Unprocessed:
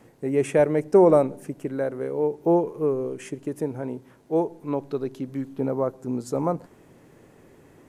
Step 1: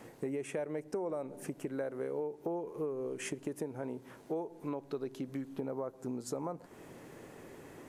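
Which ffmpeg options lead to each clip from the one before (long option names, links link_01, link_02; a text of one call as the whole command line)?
ffmpeg -i in.wav -af "alimiter=limit=-17dB:level=0:latency=1:release=377,acompressor=threshold=-37dB:ratio=5,lowshelf=frequency=230:gain=-7,volume=3.5dB" out.wav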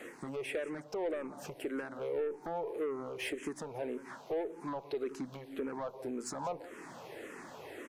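ffmpeg -i in.wav -filter_complex "[0:a]aecho=1:1:180:0.119,asplit=2[link_01][link_02];[link_02]highpass=frequency=720:poles=1,volume=19dB,asoftclip=type=tanh:threshold=-23.5dB[link_03];[link_01][link_03]amix=inputs=2:normalize=0,lowpass=frequency=4100:poles=1,volume=-6dB,asplit=2[link_04][link_05];[link_05]afreqshift=-1.8[link_06];[link_04][link_06]amix=inputs=2:normalize=1,volume=-1.5dB" out.wav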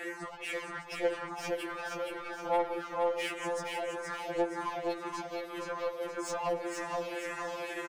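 ffmpeg -i in.wav -filter_complex "[0:a]asplit=2[link_01][link_02];[link_02]highpass=frequency=720:poles=1,volume=20dB,asoftclip=type=tanh:threshold=-26dB[link_03];[link_01][link_03]amix=inputs=2:normalize=0,lowpass=frequency=4200:poles=1,volume=-6dB,aecho=1:1:471|942|1413|1884|2355|2826:0.631|0.29|0.134|0.0614|0.0283|0.013,afftfilt=real='re*2.83*eq(mod(b,8),0)':imag='im*2.83*eq(mod(b,8),0)':win_size=2048:overlap=0.75" out.wav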